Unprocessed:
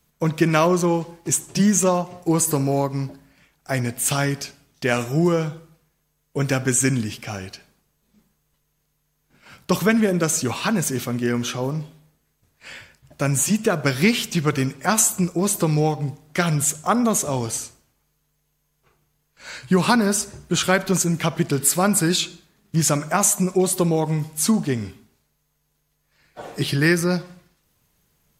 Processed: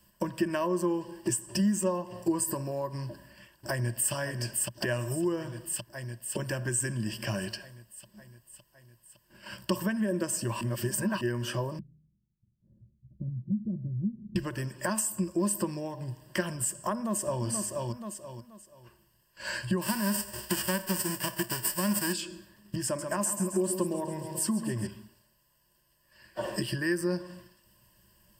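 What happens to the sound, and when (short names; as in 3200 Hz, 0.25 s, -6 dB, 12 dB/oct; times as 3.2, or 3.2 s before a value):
3.07–4.12 echo throw 0.56 s, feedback 65%, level -8 dB
10.61–11.21 reverse
11.79–14.36 ladder low-pass 220 Hz, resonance 35%
16.93–17.44 echo throw 0.48 s, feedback 25%, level -10.5 dB
19.81–22.12 spectral whitening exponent 0.3
22.85–24.87 feedback echo 0.135 s, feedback 59%, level -10.5 dB
whole clip: dynamic EQ 3800 Hz, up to -7 dB, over -41 dBFS, Q 1.2; compressor 6:1, threshold -31 dBFS; ripple EQ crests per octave 1.3, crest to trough 15 dB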